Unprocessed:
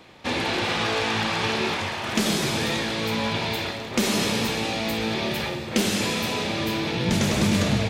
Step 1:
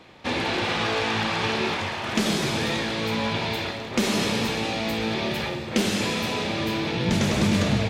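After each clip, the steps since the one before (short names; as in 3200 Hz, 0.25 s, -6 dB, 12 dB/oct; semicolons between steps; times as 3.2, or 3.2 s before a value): high shelf 7800 Hz -7.5 dB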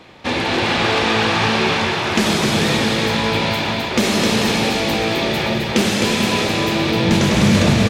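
bouncing-ball echo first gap 0.26 s, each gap 0.7×, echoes 5; gain +6 dB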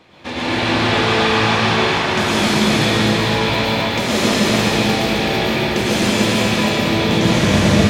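reverb RT60 2.0 s, pre-delay 98 ms, DRR -7 dB; gain -6.5 dB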